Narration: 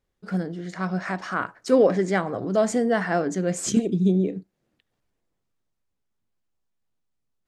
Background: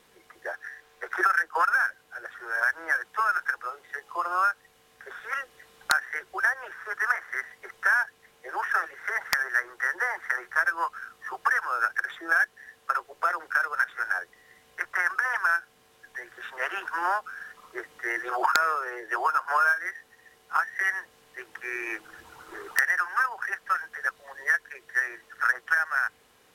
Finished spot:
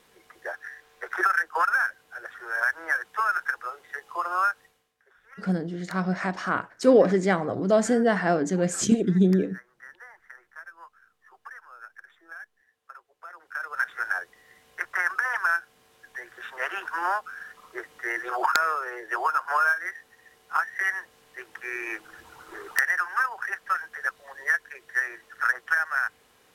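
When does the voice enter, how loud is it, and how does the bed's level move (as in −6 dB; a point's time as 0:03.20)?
5.15 s, +0.5 dB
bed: 0:04.64 0 dB
0:04.95 −19.5 dB
0:13.22 −19.5 dB
0:13.86 0 dB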